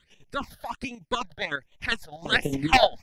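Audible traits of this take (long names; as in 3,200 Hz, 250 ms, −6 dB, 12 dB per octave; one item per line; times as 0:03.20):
chopped level 9.9 Hz, depth 60%, duty 40%
phaser sweep stages 8, 1.3 Hz, lowest notch 310–1,500 Hz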